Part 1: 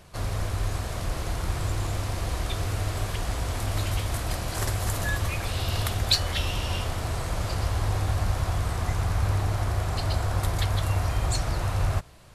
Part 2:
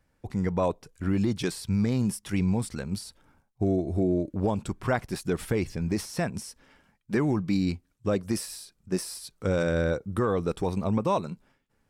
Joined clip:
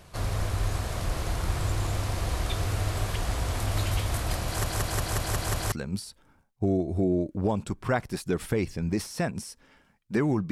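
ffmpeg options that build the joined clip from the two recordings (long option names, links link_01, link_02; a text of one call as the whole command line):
ffmpeg -i cue0.wav -i cue1.wav -filter_complex "[0:a]apad=whole_dur=10.51,atrim=end=10.51,asplit=7[link_01][link_02][link_03][link_04][link_05][link_06][link_07];[link_01]atrim=end=4.642[link_08];[link_02]atrim=start=4.458:end=4.642[link_09];[link_03]atrim=start=4.458:end=4.642[link_10];[link_04]atrim=start=4.458:end=4.642[link_11];[link_05]atrim=start=4.458:end=4.642[link_12];[link_06]atrim=start=4.458:end=4.642[link_13];[link_07]atrim=start=4.458:end=4.642[link_14];[1:a]atrim=start=2.708:end=7.5[link_15];[link_08][link_09]acrossfade=duration=0.004:curve1=hsin:curve2=hsin[link_16];[link_16][link_10]acrossfade=duration=0.004:curve1=hsin:curve2=hsin[link_17];[link_17][link_11]acrossfade=duration=0.004:curve1=hsin:curve2=hsin[link_18];[link_18][link_12]acrossfade=duration=0.004:curve1=hsin:curve2=hsin[link_19];[link_19][link_13]acrossfade=duration=0.004:curve1=hsin:curve2=hsin[link_20];[link_20][link_14]acrossfade=duration=0.004:curve1=hsin:curve2=hsin[link_21];[link_21][link_15]acrossfade=duration=0.004:curve1=hsin:curve2=hsin" out.wav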